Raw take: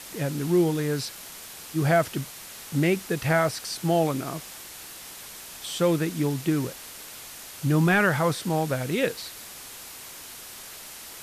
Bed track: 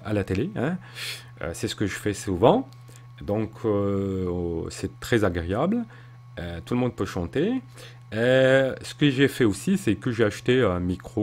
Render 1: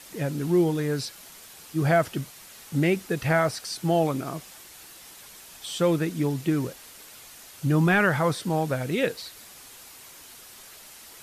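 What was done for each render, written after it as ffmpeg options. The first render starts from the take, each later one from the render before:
-af "afftdn=nr=6:nf=-42"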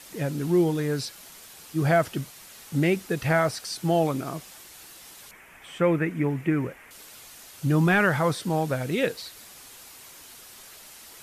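-filter_complex "[0:a]asettb=1/sr,asplit=3[a][b][c];[a]atrim=end=5.314[d];[b]atrim=start=5.31:end=6.91,asetpts=PTS-STARTPTS,afade=t=in:d=0.004:c=qsin,afade=t=out:st=1.596:d=0.004:c=qsin,highshelf=f=3k:t=q:w=3:g=-11.5[e];[c]atrim=start=6.906[f];[d][e]acrossfade=d=0.004:c1=hsin:c2=qsin[g];[g][f]acrossfade=d=0.004:c1=qsin:c2=hsin"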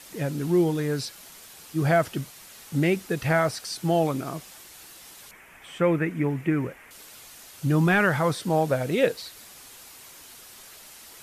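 -filter_complex "[0:a]asettb=1/sr,asplit=3[a][b][c];[a]atrim=end=8.484[d];[b]atrim=start=8.48:end=9.12,asetpts=PTS-STARTPTS,afade=t=in:d=0.004:c=qsin,afade=t=out:st=0.636:d=0.004:c=qsin,equalizer=f=590:w=1.5:g=5.5[e];[c]atrim=start=9.116[f];[d][e]acrossfade=d=0.004:c1=hsin:c2=qsin[g];[g][f]acrossfade=d=0.004:c1=qsin:c2=hsin"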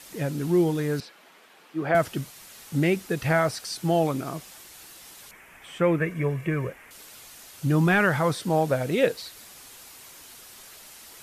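-filter_complex "[0:a]asettb=1/sr,asplit=3[a][b][c];[a]atrim=end=1.004[d];[b]atrim=start=1:end=1.95,asetpts=PTS-STARTPTS,afade=t=in:d=0.004:c=qsin,afade=t=out:st=0.946:d=0.004:c=qsin,acrossover=split=210 3100:gain=0.0794 1 0.126[e][f][g];[e][f][g]amix=inputs=3:normalize=0[h];[c]atrim=start=1.946[i];[d][h]acrossfade=d=0.004:c1=hsin:c2=qsin[j];[j][i]acrossfade=d=0.004:c1=qsin:c2=hsin,asettb=1/sr,asplit=3[k][l][m];[k]atrim=end=6.004[n];[l]atrim=start=6:end=6.7,asetpts=PTS-STARTPTS,afade=t=in:d=0.004:c=qsin,afade=t=out:st=0.696:d=0.004:c=qsin,aecho=1:1:1.8:0.65,atrim=end_sample=30870[o];[m]atrim=start=6.696[p];[n][o]acrossfade=d=0.004:c1=hsin:c2=qsin[q];[q][p]acrossfade=d=0.004:c1=qsin:c2=hsin"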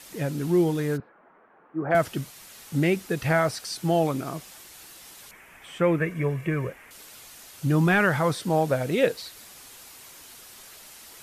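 -filter_complex "[0:a]asplit=3[a][b][c];[a]afade=t=out:st=0.96:d=0.02[d];[b]lowpass=f=1.5k:w=0.5412,lowpass=f=1.5k:w=1.3066,afade=t=in:st=0.96:d=0.02,afade=t=out:st=1.9:d=0.02[e];[c]afade=t=in:st=1.9:d=0.02[f];[d][e][f]amix=inputs=3:normalize=0"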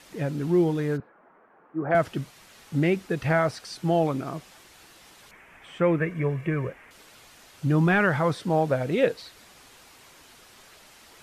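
-af "aemphasis=mode=reproduction:type=50kf"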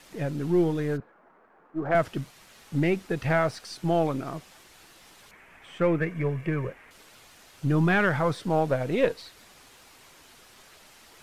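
-af "aeval=exprs='if(lt(val(0),0),0.708*val(0),val(0))':c=same"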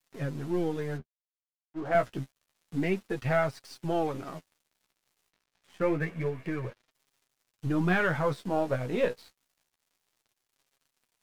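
-af "aeval=exprs='sgn(val(0))*max(abs(val(0))-0.00501,0)':c=same,flanger=delay=7.3:depth=9.2:regen=17:speed=0.28:shape=sinusoidal"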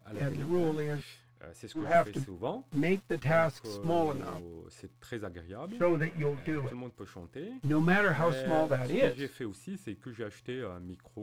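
-filter_complex "[1:a]volume=-18dB[a];[0:a][a]amix=inputs=2:normalize=0"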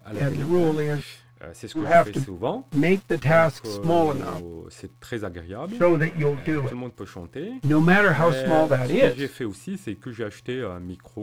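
-af "volume=9dB"

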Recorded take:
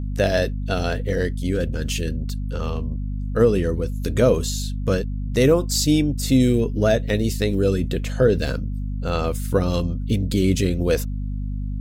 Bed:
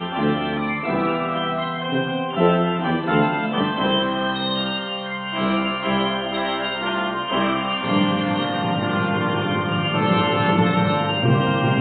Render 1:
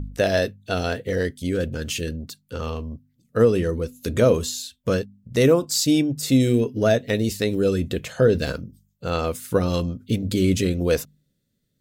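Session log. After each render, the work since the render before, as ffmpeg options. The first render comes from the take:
-af "bandreject=f=50:t=h:w=4,bandreject=f=100:t=h:w=4,bandreject=f=150:t=h:w=4,bandreject=f=200:t=h:w=4,bandreject=f=250:t=h:w=4"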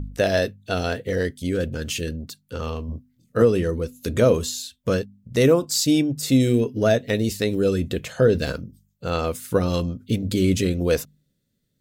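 -filter_complex "[0:a]asettb=1/sr,asplit=3[a][b][c];[a]atrim=end=2.864[d];[b]atrim=start=2.86:end=3.42,asetpts=PTS-STARTPTS,afade=t=in:d=0.004:c=qsin,afade=t=out:st=0.556:d=0.004:c=qsin,asplit=2[e][f];[f]adelay=24,volume=-2dB[g];[e][g]amix=inputs=2:normalize=0,atrim=end_sample=24696[h];[c]atrim=start=3.416[i];[d][h]acrossfade=d=0.004:c1=hsin:c2=qsin[j];[j][i]acrossfade=d=0.004:c1=qsin:c2=hsin"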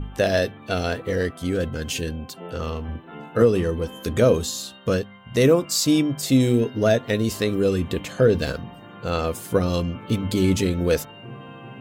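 -filter_complex "[1:a]volume=-21dB[a];[0:a][a]amix=inputs=2:normalize=0"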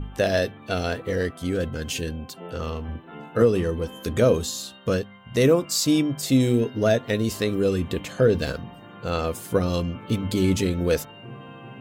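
-af "volume=-1.5dB"

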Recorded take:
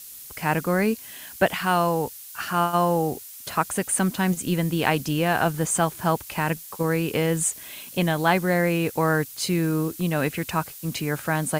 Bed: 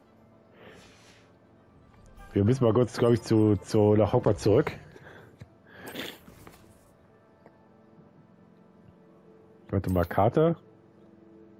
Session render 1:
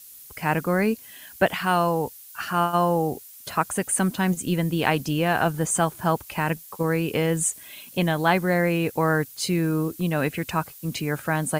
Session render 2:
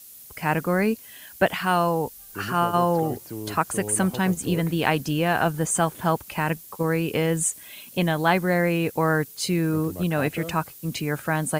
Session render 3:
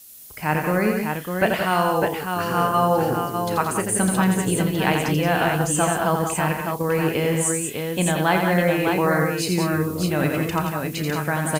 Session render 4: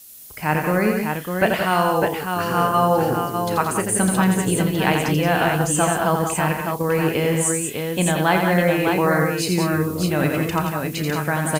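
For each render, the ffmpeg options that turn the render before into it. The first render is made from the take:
-af "afftdn=nr=6:nf=-42"
-filter_complex "[1:a]volume=-12.5dB[a];[0:a][a]amix=inputs=2:normalize=0"
-filter_complex "[0:a]asplit=2[a][b];[b]adelay=33,volume=-12dB[c];[a][c]amix=inputs=2:normalize=0,aecho=1:1:85|171|186|603:0.531|0.316|0.376|0.562"
-af "volume=1.5dB"

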